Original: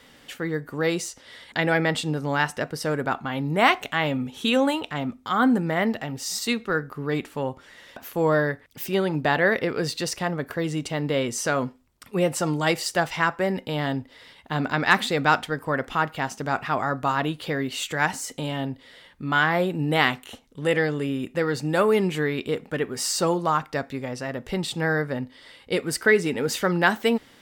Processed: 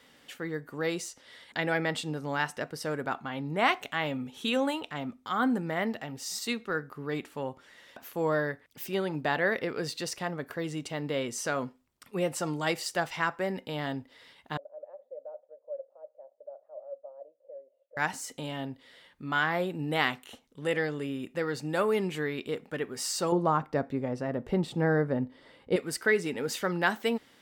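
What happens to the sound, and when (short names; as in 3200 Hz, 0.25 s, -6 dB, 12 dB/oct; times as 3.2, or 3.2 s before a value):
3.29–3.69 high shelf 11000 Hz -11.5 dB
14.57–17.97 Butterworth band-pass 570 Hz, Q 6.8
23.32–25.76 tilt shelf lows +8.5 dB, about 1400 Hz
whole clip: low shelf 89 Hz -9.5 dB; gain -6.5 dB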